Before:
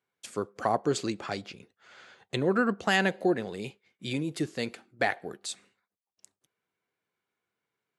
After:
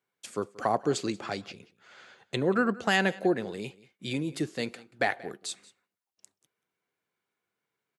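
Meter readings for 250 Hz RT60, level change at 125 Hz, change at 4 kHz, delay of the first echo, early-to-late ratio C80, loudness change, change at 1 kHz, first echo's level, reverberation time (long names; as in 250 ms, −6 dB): no reverb audible, −0.5 dB, 0.0 dB, 182 ms, no reverb audible, 0.0 dB, 0.0 dB, −21.0 dB, no reverb audible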